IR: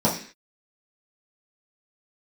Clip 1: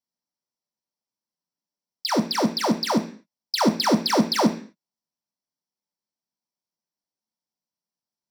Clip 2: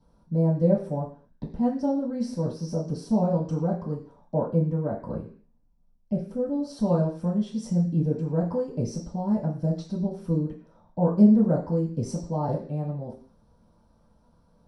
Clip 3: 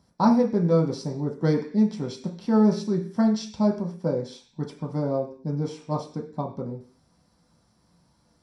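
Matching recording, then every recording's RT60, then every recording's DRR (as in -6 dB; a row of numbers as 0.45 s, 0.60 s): 2; 0.45 s, 0.45 s, 0.45 s; 4.0 dB, -7.5 dB, -0.5 dB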